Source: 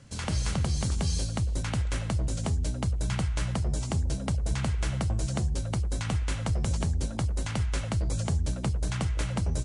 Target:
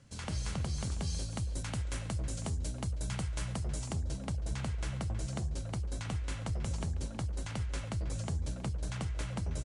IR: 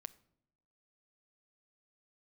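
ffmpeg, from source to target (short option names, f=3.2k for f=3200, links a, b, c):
-filter_complex "[0:a]asettb=1/sr,asplit=3[a][b][c];[a]atrim=end=1.314[d];[b]atrim=start=1.31:end=3.93,asetpts=PTS-STARTPTS,afade=t=in:d=0.004:c=qsin,afade=t=out:st=2.616:d=0.004:c=qsin,highshelf=f=7.5k:g=8[e];[c]atrim=start=3.926[f];[d][e]acrossfade=d=0.004:c1=hsin:c2=qsin[g];[g][f]acrossfade=d=0.004:c1=qsin:c2=hsin,asplit=2[h][i];[i]adelay=320,highpass=300,lowpass=3.4k,asoftclip=type=hard:threshold=-29dB,volume=-10dB[j];[h][j]amix=inputs=2:normalize=0,volume=-7.5dB"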